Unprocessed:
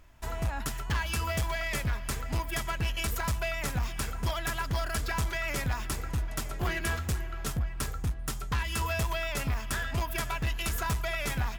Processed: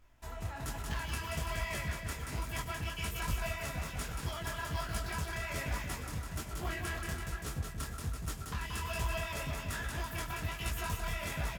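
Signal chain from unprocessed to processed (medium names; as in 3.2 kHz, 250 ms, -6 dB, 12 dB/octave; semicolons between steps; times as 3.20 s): bouncing-ball echo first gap 180 ms, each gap 0.85×, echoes 5; detune thickener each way 42 cents; trim -4 dB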